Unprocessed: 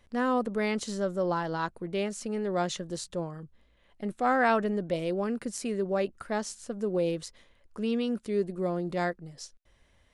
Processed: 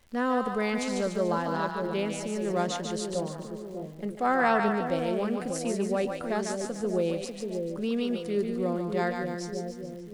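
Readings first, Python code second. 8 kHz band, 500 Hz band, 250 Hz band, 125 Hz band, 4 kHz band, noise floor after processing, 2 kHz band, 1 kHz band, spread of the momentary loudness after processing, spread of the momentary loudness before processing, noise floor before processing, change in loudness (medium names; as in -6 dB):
+1.5 dB, +1.5 dB, +1.5 dB, +1.5 dB, +2.0 dB, -41 dBFS, +1.5 dB, +1.5 dB, 9 LU, 11 LU, -65 dBFS, +1.0 dB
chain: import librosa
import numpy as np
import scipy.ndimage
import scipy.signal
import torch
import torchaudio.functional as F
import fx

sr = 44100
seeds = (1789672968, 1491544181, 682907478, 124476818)

y = fx.dmg_crackle(x, sr, seeds[0], per_s=160.0, level_db=-46.0)
y = fx.echo_split(y, sr, split_hz=610.0, low_ms=595, high_ms=146, feedback_pct=52, wet_db=-4.5)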